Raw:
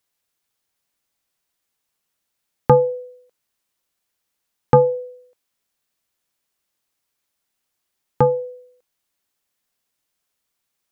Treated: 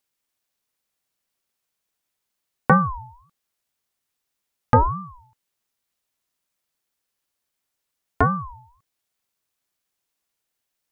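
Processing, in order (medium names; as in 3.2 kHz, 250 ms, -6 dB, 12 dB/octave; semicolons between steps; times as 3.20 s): ring modulator with a swept carrier 530 Hz, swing 30%, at 1.8 Hz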